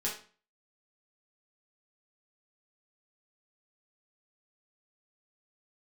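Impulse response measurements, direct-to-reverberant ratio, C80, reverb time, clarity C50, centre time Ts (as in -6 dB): -5.5 dB, 12.0 dB, 0.40 s, 6.5 dB, 28 ms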